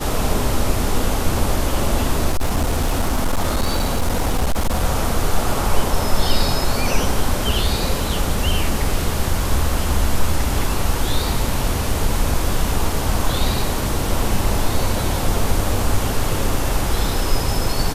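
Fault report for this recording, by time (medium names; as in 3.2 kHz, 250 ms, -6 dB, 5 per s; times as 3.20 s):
2.30–4.85 s: clipped -13.5 dBFS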